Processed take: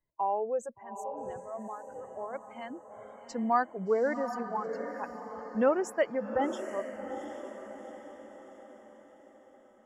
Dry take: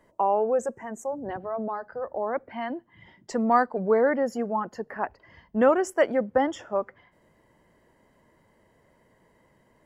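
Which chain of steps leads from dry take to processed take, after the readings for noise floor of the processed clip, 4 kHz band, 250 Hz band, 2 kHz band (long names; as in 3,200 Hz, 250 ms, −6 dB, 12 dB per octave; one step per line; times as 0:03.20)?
−59 dBFS, −6.0 dB, −6.5 dB, −6.0 dB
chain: spectral dynamics exaggerated over time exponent 1.5
feedback delay with all-pass diffusion 773 ms, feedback 48%, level −9 dB
level −4.5 dB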